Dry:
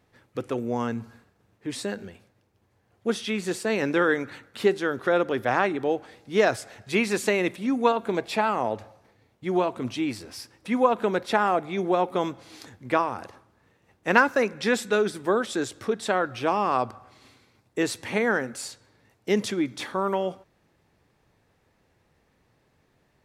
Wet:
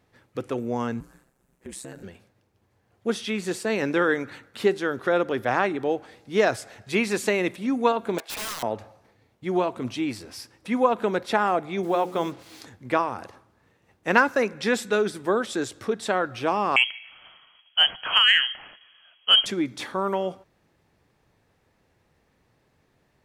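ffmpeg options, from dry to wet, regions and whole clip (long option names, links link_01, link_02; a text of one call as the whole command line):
ffmpeg -i in.wav -filter_complex "[0:a]asettb=1/sr,asplit=3[link_01][link_02][link_03];[link_01]atrim=end=1.004[link_04];[link_02]atrim=start=1:end=2.03,asetpts=PTS-STARTPTS,afade=type=in:duration=0.004:curve=qsin,afade=type=out:start_time=1.026:duration=0.004:curve=qsin,highshelf=frequency=6200:width_type=q:width=1.5:gain=8.5,acompressor=threshold=-33dB:ratio=4:attack=3.2:release=140:knee=1:detection=peak,aeval=exprs='val(0)*sin(2*PI*64*n/s)':channel_layout=same[link_05];[link_03]atrim=start=2.026[link_06];[link_04][link_05]acrossfade=duration=0.004:curve1=hsin:curve2=qsin[link_07];[link_07][link_06]acrossfade=duration=0.004:curve1=qsin:curve2=hsin,asettb=1/sr,asplit=3[link_08][link_09][link_10];[link_08]atrim=end=8.184[link_11];[link_09]atrim=start=8.18:end=8.63,asetpts=PTS-STARTPTS,afade=type=in:duration=0.004:curve=qsin,afade=type=out:start_time=0.446:duration=0.004:curve=qsin,highpass=780,aeval=exprs='(mod(22.4*val(0)+1,2)-1)/22.4':channel_layout=same[link_12];[link_10]atrim=start=8.626[link_13];[link_11][link_12]acrossfade=duration=0.004:curve1=hsin:curve2=qsin[link_14];[link_14][link_13]acrossfade=duration=0.004:curve1=qsin:curve2=hsin,asettb=1/sr,asplit=3[link_15][link_16][link_17];[link_15]atrim=end=11.834[link_18];[link_16]atrim=start=11.83:end=12.61,asetpts=PTS-STARTPTS,afade=type=in:duration=0.004:curve=qsin,afade=type=out:start_time=0.776:duration=0.004:curve=qsin,highpass=43,bandreject=frequency=60:width_type=h:width=6,bandreject=frequency=120:width_type=h:width=6,bandreject=frequency=180:width_type=h:width=6,bandreject=frequency=240:width_type=h:width=6,bandreject=frequency=300:width_type=h:width=6,bandreject=frequency=360:width_type=h:width=6,bandreject=frequency=420:width_type=h:width=6,bandreject=frequency=480:width_type=h:width=6,acrusher=bits=7:mix=0:aa=0.5[link_19];[link_17]atrim=start=12.606[link_20];[link_18][link_19]acrossfade=duration=0.004:curve1=hsin:curve2=qsin[link_21];[link_21][link_20]acrossfade=duration=0.004:curve1=qsin:curve2=hsin,asettb=1/sr,asplit=3[link_22][link_23][link_24];[link_22]atrim=end=16.764[link_25];[link_23]atrim=start=16.76:end=19.46,asetpts=PTS-STARTPTS,afade=type=in:duration=0.004:curve=qsin,afade=type=out:start_time=2.696:duration=0.004:curve=qsin,lowpass=frequency=2900:width_type=q:width=0.5098,lowpass=frequency=2900:width_type=q:width=0.6013,lowpass=frequency=2900:width_type=q:width=0.9,lowpass=frequency=2900:width_type=q:width=2.563,afreqshift=-3400,acontrast=45[link_26];[link_24]atrim=start=19.456[link_27];[link_25][link_26]acrossfade=duration=0.004:curve1=hsin:curve2=qsin[link_28];[link_28][link_27]acrossfade=duration=0.004:curve1=qsin:curve2=hsin" out.wav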